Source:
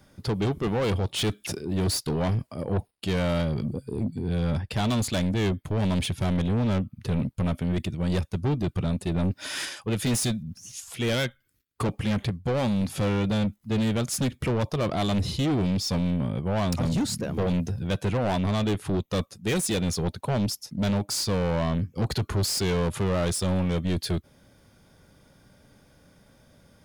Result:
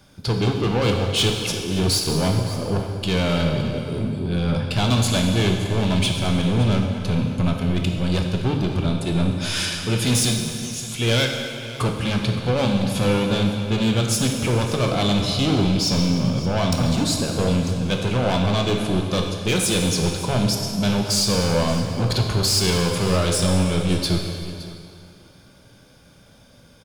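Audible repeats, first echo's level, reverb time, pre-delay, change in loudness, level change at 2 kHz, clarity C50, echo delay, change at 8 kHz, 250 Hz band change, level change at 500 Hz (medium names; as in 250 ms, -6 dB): 1, -16.5 dB, 2.4 s, 10 ms, +6.0 dB, +7.5 dB, 3.5 dB, 567 ms, +7.5 dB, +5.0 dB, +5.5 dB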